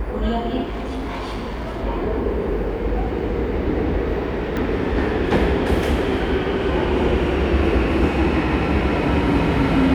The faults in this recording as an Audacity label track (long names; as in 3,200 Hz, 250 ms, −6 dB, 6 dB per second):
0.630000	1.830000	clipping −23 dBFS
4.570000	4.570000	click −13 dBFS